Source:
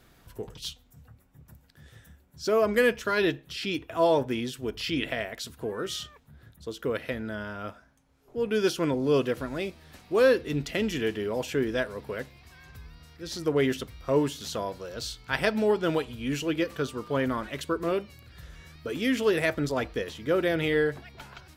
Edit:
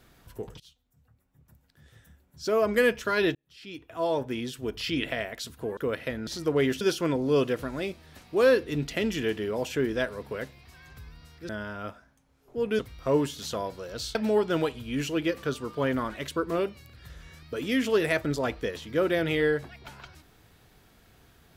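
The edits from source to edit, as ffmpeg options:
-filter_complex "[0:a]asplit=9[s0][s1][s2][s3][s4][s5][s6][s7][s8];[s0]atrim=end=0.6,asetpts=PTS-STARTPTS,afade=t=out:st=0.596:d=0.004:c=hsin:silence=0.0794328[s9];[s1]atrim=start=0.6:end=3.35,asetpts=PTS-STARTPTS,afade=t=in:d=2.23:silence=0.0794328,afade=t=out:st=2.746:d=0.004:c=hsin[s10];[s2]atrim=start=3.35:end=5.772,asetpts=PTS-STARTPTS,afade=t=in:d=1.31[s11];[s3]atrim=start=6.788:end=7.292[s12];[s4]atrim=start=13.268:end=13.812[s13];[s5]atrim=start=8.588:end=13.272[s14];[s6]atrim=start=7.288:end=8.592[s15];[s7]atrim=start=13.808:end=15.172[s16];[s8]atrim=start=15.478[s17];[s9][s10][s11]concat=n=3:v=0:a=1[s18];[s18][s12]acrossfade=d=0.004:c1=hsin:c2=hsin[s19];[s19][s13]acrossfade=d=0.004:c1=hsin:c2=hsin[s20];[s20][s14]acrossfade=d=0.004:c1=hsin:c2=hsin[s21];[s21][s15]acrossfade=d=0.004:c1=hsin:c2=hsin[s22];[s22][s16]acrossfade=d=0.004:c1=hsin:c2=hsin[s23];[s23][s17]acrossfade=d=0.004:c1=hsin:c2=hsin"

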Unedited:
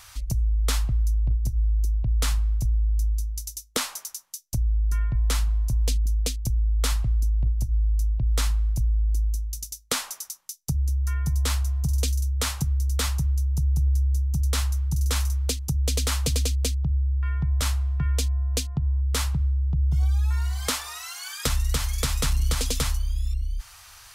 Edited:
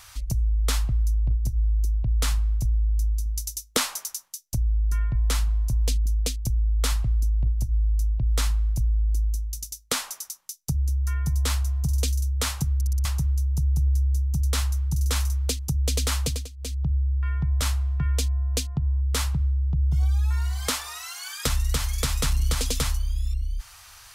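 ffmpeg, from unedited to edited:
-filter_complex "[0:a]asplit=10[s0][s1][s2][s3][s4][s5][s6][s7][s8][s9];[s0]atrim=end=3.262[s10];[s1]atrim=start=3.258:end=4.282,asetpts=PTS-STARTPTS,volume=1.41[s11];[s2]atrim=start=4.278:end=12.812[s12];[s3]atrim=start=12.748:end=12.812[s13];[s4]atrim=start=12.748:end=12.812[s14];[s5]atrim=start=12.748:end=12.812[s15];[s6]atrim=start=12.748:end=12.812[s16];[s7]atrim=start=13.048:end=16.49,asetpts=PTS-STARTPTS,afade=t=out:st=3.172:d=0.27:silence=0.125893[s17];[s8]atrim=start=16.49:end=16.57,asetpts=PTS-STARTPTS,volume=0.126[s18];[s9]atrim=start=16.57,asetpts=PTS-STARTPTS,afade=t=in:d=0.27:silence=0.125893[s19];[s10][s11]acrossfade=d=0.004:c1=hsin:c2=hsin[s20];[s20][s12]acrossfade=d=0.004:c1=hsin:c2=hsin[s21];[s21][s13]acrossfade=d=0.004:c1=hsin:c2=hsin[s22];[s22][s14]acrossfade=d=0.004:c1=hsin:c2=hsin[s23];[s23][s15]acrossfade=d=0.004:c1=hsin:c2=hsin[s24];[s24][s16]acrossfade=d=0.004:c1=hsin:c2=hsin[s25];[s17][s18][s19]concat=n=3:v=0:a=1[s26];[s25][s26]acrossfade=d=0.004:c1=hsin:c2=hsin"

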